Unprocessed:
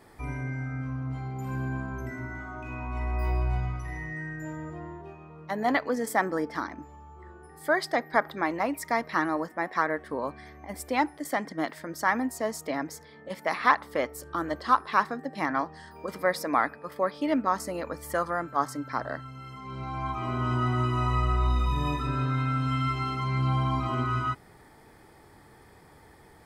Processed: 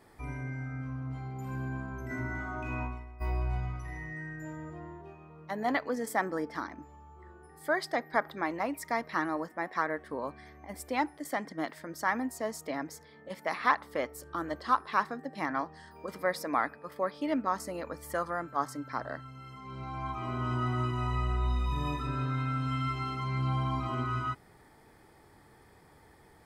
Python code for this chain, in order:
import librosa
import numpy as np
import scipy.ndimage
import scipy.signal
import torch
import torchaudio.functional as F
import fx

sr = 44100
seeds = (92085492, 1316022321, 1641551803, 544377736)

y = fx.over_compress(x, sr, threshold_db=-35.0, ratio=-0.5, at=(2.09, 3.2), fade=0.02)
y = fx.notch_comb(y, sr, f0_hz=160.0, at=(20.91, 21.72))
y = y * librosa.db_to_amplitude(-4.5)